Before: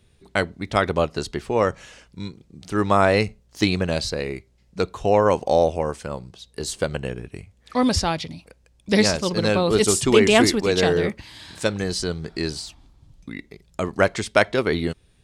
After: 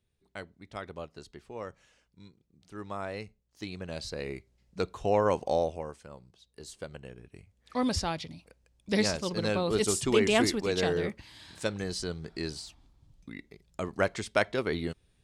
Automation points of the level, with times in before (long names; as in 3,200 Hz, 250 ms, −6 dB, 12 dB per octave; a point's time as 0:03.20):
0:03.64 −20 dB
0:04.30 −8 dB
0:05.47 −8 dB
0:06.03 −17 dB
0:07.11 −17 dB
0:07.77 −9 dB